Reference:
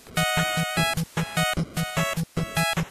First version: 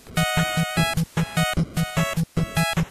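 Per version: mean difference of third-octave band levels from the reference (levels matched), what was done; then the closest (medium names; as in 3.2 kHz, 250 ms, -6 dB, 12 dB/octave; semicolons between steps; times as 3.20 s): 2.0 dB: bass shelf 240 Hz +6.5 dB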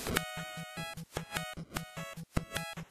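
5.0 dB: inverted gate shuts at -23 dBFS, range -27 dB; trim +9 dB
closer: first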